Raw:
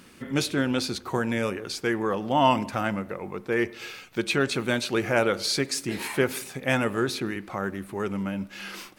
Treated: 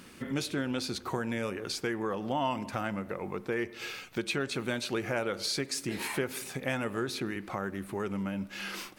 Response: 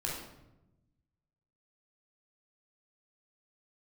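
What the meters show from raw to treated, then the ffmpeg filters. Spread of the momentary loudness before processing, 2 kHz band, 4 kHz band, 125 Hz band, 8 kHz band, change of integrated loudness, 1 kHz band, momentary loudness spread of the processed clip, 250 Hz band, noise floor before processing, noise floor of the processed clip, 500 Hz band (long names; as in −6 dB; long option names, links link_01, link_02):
9 LU, −7.0 dB, −5.5 dB, −6.0 dB, −5.0 dB, −7.0 dB, −8.5 dB, 5 LU, −6.5 dB, −50 dBFS, −50 dBFS, −7.0 dB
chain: -af "acompressor=threshold=-32dB:ratio=2.5"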